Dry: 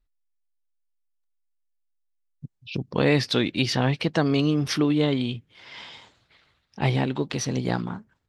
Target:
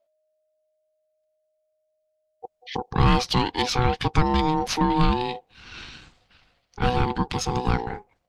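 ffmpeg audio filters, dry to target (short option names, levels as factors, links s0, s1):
-af "aeval=exprs='0.422*(cos(1*acos(clip(val(0)/0.422,-1,1)))-cos(1*PI/2))+0.0531*(cos(4*acos(clip(val(0)/0.422,-1,1)))-cos(4*PI/2))+0.0473*(cos(5*acos(clip(val(0)/0.422,-1,1)))-cos(5*PI/2))+0.015*(cos(6*acos(clip(val(0)/0.422,-1,1)))-cos(6*PI/2))':c=same,aeval=exprs='val(0)*sin(2*PI*620*n/s)':c=same,asubboost=boost=5:cutoff=180"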